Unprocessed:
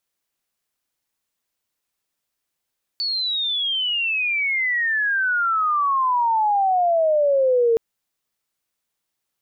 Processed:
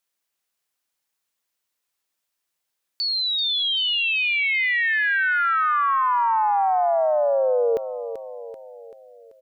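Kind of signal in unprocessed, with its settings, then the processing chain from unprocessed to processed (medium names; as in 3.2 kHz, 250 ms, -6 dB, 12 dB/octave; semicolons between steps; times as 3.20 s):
sweep logarithmic 4.5 kHz -> 450 Hz -21 dBFS -> -14 dBFS 4.77 s
bass shelf 380 Hz -8 dB; feedback delay 386 ms, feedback 52%, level -11 dB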